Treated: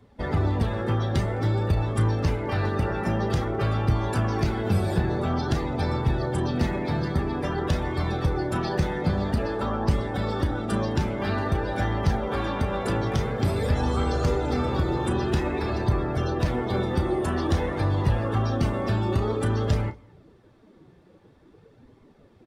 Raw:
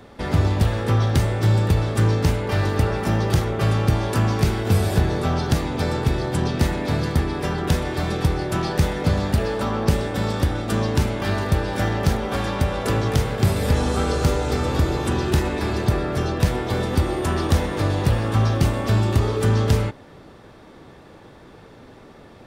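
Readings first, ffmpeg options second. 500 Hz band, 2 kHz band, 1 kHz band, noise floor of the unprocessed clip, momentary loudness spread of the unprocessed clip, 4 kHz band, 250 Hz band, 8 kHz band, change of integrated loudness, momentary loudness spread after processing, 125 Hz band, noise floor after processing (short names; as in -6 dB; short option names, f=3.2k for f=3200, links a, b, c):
-3.0 dB, -4.5 dB, -2.5 dB, -46 dBFS, 4 LU, -7.0 dB, -3.0 dB, -10.5 dB, -4.0 dB, 3 LU, -5.0 dB, -56 dBFS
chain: -filter_complex "[0:a]afftdn=nr=14:nf=-34,asplit=2[a][b];[b]alimiter=limit=-17dB:level=0:latency=1:release=33,volume=-1dB[c];[a][c]amix=inputs=2:normalize=0,asplit=2[d][e];[e]adelay=33,volume=-11.5dB[f];[d][f]amix=inputs=2:normalize=0,asplit=2[g][h];[h]adelay=209.9,volume=-27dB,highshelf=f=4k:g=-4.72[i];[g][i]amix=inputs=2:normalize=0,flanger=delay=0.9:depth=4.8:regen=62:speed=0.5:shape=sinusoidal,volume=-3dB"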